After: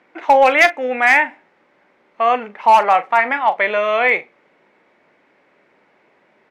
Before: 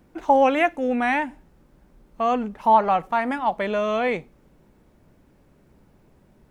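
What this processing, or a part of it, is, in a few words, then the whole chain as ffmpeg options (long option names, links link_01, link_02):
megaphone: -filter_complex "[0:a]highpass=510,lowpass=3600,equalizer=frequency=2100:width_type=o:width=0.57:gain=9.5,asoftclip=type=hard:threshold=-11.5dB,asplit=2[link_01][link_02];[link_02]adelay=39,volume=-13.5dB[link_03];[link_01][link_03]amix=inputs=2:normalize=0,volume=7dB"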